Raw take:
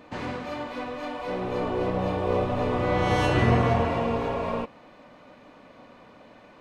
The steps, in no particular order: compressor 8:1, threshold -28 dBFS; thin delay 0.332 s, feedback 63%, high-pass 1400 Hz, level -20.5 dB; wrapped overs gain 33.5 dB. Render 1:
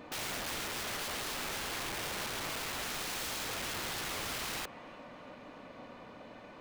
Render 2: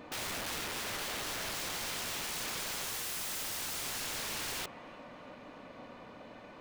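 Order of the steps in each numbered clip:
thin delay > compressor > wrapped overs; thin delay > wrapped overs > compressor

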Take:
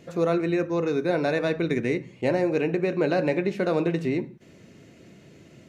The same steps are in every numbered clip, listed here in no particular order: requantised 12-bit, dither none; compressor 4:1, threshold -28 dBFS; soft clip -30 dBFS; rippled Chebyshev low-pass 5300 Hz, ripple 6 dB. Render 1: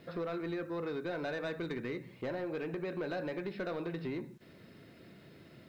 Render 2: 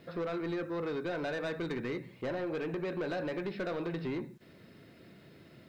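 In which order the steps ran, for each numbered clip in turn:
compressor > rippled Chebyshev low-pass > requantised > soft clip; rippled Chebyshev low-pass > compressor > requantised > soft clip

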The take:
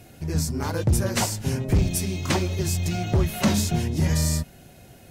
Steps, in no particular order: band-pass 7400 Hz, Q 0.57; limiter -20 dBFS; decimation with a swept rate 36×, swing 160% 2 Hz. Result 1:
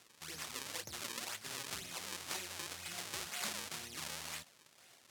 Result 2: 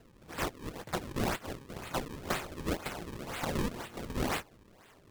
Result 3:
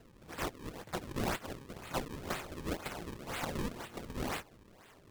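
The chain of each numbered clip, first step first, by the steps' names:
limiter > decimation with a swept rate > band-pass; band-pass > limiter > decimation with a swept rate; limiter > band-pass > decimation with a swept rate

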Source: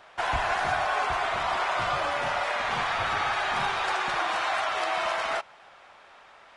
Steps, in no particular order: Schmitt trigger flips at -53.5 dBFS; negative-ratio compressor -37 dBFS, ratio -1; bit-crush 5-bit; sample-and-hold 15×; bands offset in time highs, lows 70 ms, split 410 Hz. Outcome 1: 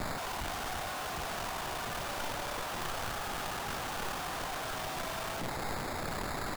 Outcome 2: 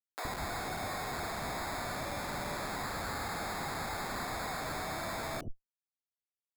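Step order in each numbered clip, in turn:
sample-and-hold > bands offset in time > Schmitt trigger > bit-crush > negative-ratio compressor; bit-crush > Schmitt trigger > negative-ratio compressor > sample-and-hold > bands offset in time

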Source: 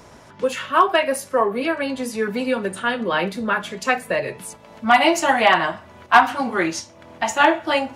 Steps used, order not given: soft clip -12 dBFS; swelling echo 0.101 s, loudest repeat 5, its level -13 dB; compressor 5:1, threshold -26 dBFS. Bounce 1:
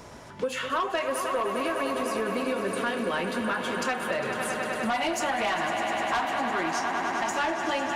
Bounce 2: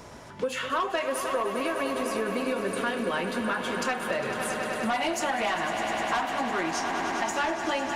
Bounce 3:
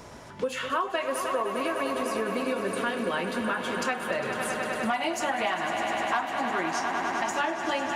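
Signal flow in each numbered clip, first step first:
swelling echo > soft clip > compressor; soft clip > swelling echo > compressor; swelling echo > compressor > soft clip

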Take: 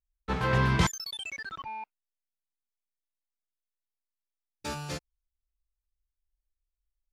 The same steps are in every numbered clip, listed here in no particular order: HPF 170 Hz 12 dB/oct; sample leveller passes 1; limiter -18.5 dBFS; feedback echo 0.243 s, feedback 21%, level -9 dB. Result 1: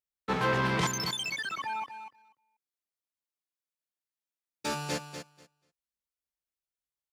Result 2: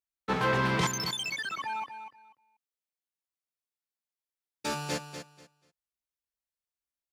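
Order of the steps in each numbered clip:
limiter > feedback echo > sample leveller > HPF; limiter > HPF > sample leveller > feedback echo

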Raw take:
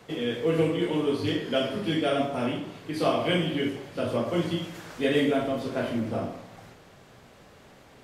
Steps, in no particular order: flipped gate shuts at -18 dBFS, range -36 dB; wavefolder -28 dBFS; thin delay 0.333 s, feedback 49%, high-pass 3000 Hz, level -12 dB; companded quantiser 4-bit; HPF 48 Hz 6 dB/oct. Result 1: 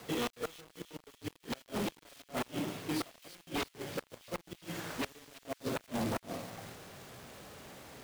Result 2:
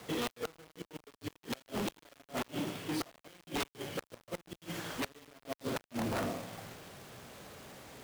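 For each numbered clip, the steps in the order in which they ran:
flipped gate > wavefolder > HPF > companded quantiser > thin delay; thin delay > flipped gate > companded quantiser > wavefolder > HPF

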